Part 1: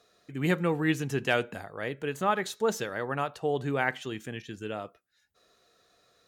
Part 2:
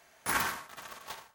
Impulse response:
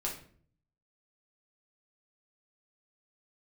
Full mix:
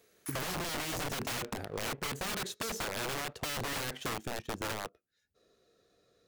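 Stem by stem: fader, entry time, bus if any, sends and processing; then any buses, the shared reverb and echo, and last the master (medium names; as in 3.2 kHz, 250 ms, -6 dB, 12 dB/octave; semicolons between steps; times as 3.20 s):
-4.0 dB, 0.00 s, no send, resonant low shelf 610 Hz +7.5 dB, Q 1.5; waveshaping leveller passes 2; integer overflow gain 17.5 dB
-10.0 dB, 0.00 s, no send, high-pass 1.4 kHz; treble shelf 8 kHz +10 dB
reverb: none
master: compression 5:1, threshold -35 dBFS, peak gain reduction 10 dB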